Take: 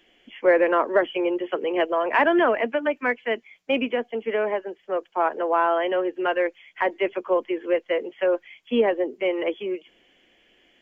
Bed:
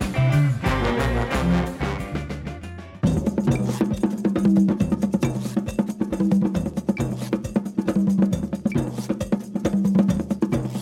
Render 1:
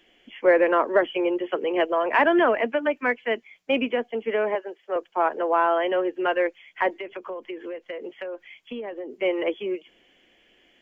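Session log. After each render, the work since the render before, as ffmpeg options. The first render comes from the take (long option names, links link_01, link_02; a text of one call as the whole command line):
ffmpeg -i in.wav -filter_complex "[0:a]asettb=1/sr,asplit=3[link_01][link_02][link_03];[link_01]atrim=end=4.554[link_04];[link_02]atrim=start=4.55:end=4.96,asetpts=PTS-STARTPTS,afade=type=in:duration=0.004:curve=qsin,afade=type=out:start_time=0.406:duration=0.004:curve=qsin,highpass=360[link_05];[link_03]atrim=start=4.956[link_06];[link_04][link_05]acrossfade=duration=0.004:curve1=hsin:curve2=qsin[link_07];[link_07][link_06]acrossfade=duration=0.004:curve1=qsin:curve2=hsin,asettb=1/sr,asplit=3[link_08][link_09][link_10];[link_08]atrim=end=6.994[link_11];[link_09]atrim=start=6.99:end=9.12,asetpts=PTS-STARTPTS,afade=type=in:duration=0.004:curve=qsin,afade=type=out:start_time=2.126:duration=0.004:curve=qsin,acompressor=threshold=-30dB:ratio=10:attack=3.2:release=140:knee=1:detection=peak[link_12];[link_10]atrim=start=9.116[link_13];[link_11][link_12]acrossfade=duration=0.004:curve1=hsin:curve2=qsin[link_14];[link_14][link_13]acrossfade=duration=0.004:curve1=qsin:curve2=hsin" out.wav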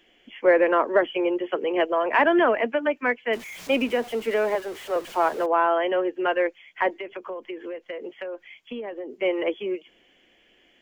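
ffmpeg -i in.wav -filter_complex "[0:a]asettb=1/sr,asplit=3[link_01][link_02][link_03];[link_01]atrim=end=3.334[link_04];[link_02]atrim=start=3.33:end=5.46,asetpts=PTS-STARTPTS,afade=type=in:duration=0.004:curve=qsin,afade=type=out:start_time=2.126:duration=0.004:curve=qsin,aeval=exprs='val(0)+0.5*0.0168*sgn(val(0))':channel_layout=same[link_05];[link_03]atrim=start=5.456[link_06];[link_04][link_05]acrossfade=duration=0.004:curve1=hsin:curve2=qsin[link_07];[link_07][link_06]acrossfade=duration=0.004:curve1=qsin:curve2=hsin" out.wav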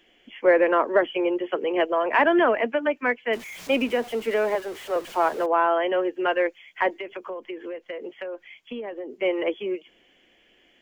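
ffmpeg -i in.wav -filter_complex "[0:a]asettb=1/sr,asplit=3[link_01][link_02][link_03];[link_01]atrim=end=5.944[link_04];[link_02]atrim=start=5.94:end=7.29,asetpts=PTS-STARTPTS,afade=type=in:duration=0.004:curve=qsin,afade=type=out:start_time=1.346:duration=0.004:curve=qsin,highshelf=frequency=4900:gain=6[link_05];[link_03]atrim=start=7.286[link_06];[link_04][link_05]acrossfade=duration=0.004:curve1=hsin:curve2=qsin[link_07];[link_07][link_06]acrossfade=duration=0.004:curve1=qsin:curve2=hsin" out.wav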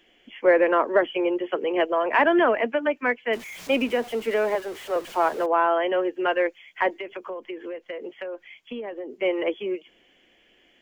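ffmpeg -i in.wav -af anull out.wav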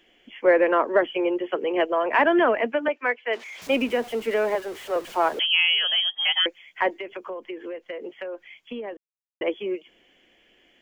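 ffmpeg -i in.wav -filter_complex "[0:a]asettb=1/sr,asplit=3[link_01][link_02][link_03];[link_01]atrim=end=2.884[link_04];[link_02]atrim=start=2.88:end=3.62,asetpts=PTS-STARTPTS,afade=type=in:duration=0.004:curve=qsin,afade=type=out:start_time=0.736:duration=0.004:curve=qsin,acrossover=split=330 6600:gain=0.0708 1 0.141[link_05][link_06][link_07];[link_05][link_06][link_07]amix=inputs=3:normalize=0[link_08];[link_03]atrim=start=3.616[link_09];[link_04][link_08]acrossfade=duration=0.004:curve1=hsin:curve2=qsin[link_10];[link_10][link_09]acrossfade=duration=0.004:curve1=qsin:curve2=hsin,asettb=1/sr,asplit=3[link_11][link_12][link_13];[link_11]atrim=end=5.394[link_14];[link_12]atrim=start=5.39:end=6.46,asetpts=PTS-STARTPTS,afade=type=in:duration=0.004:curve=qsin,afade=type=out:start_time=1.066:duration=0.004:curve=qsin,lowpass=frequency=3100:width_type=q:width=0.5098,lowpass=frequency=3100:width_type=q:width=0.6013,lowpass=frequency=3100:width_type=q:width=0.9,lowpass=frequency=3100:width_type=q:width=2.563,afreqshift=-3600[link_15];[link_13]atrim=start=6.456[link_16];[link_14][link_15]acrossfade=duration=0.004:curve1=hsin:curve2=qsin[link_17];[link_17][link_16]acrossfade=duration=0.004:curve1=qsin:curve2=hsin,asplit=3[link_18][link_19][link_20];[link_18]atrim=end=8.97,asetpts=PTS-STARTPTS,afade=type=out:start_time=8.966:duration=0.004:curve=hsin[link_21];[link_19]atrim=start=8.97:end=9.41,asetpts=PTS-STARTPTS,volume=0[link_22];[link_20]atrim=start=9.41,asetpts=PTS-STARTPTS,afade=type=in:duration=0.004:curve=hsin[link_23];[link_21][link_22][link_23]concat=n=3:v=0:a=1" out.wav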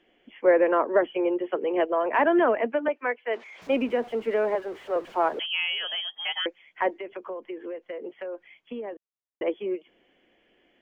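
ffmpeg -i in.wav -af "lowpass=frequency=1200:poles=1,lowshelf=frequency=120:gain=-6.5" out.wav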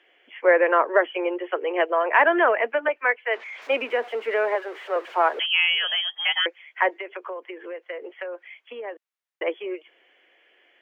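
ffmpeg -i in.wav -af "highpass=frequency=370:width=0.5412,highpass=frequency=370:width=1.3066,equalizer=frequency=1900:width=0.68:gain=9" out.wav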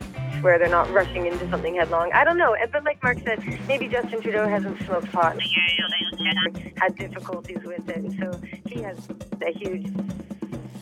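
ffmpeg -i in.wav -i bed.wav -filter_complex "[1:a]volume=-11dB[link_01];[0:a][link_01]amix=inputs=2:normalize=0" out.wav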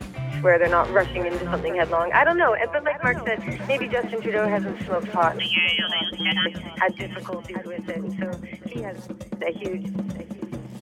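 ffmpeg -i in.wav -filter_complex "[0:a]asplit=2[link_01][link_02];[link_02]adelay=734,lowpass=frequency=2200:poles=1,volume=-16dB,asplit=2[link_03][link_04];[link_04]adelay=734,lowpass=frequency=2200:poles=1,volume=0.42,asplit=2[link_05][link_06];[link_06]adelay=734,lowpass=frequency=2200:poles=1,volume=0.42,asplit=2[link_07][link_08];[link_08]adelay=734,lowpass=frequency=2200:poles=1,volume=0.42[link_09];[link_01][link_03][link_05][link_07][link_09]amix=inputs=5:normalize=0" out.wav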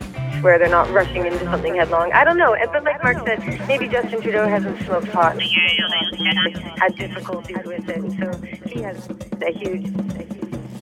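ffmpeg -i in.wav -af "volume=4.5dB,alimiter=limit=-1dB:level=0:latency=1" out.wav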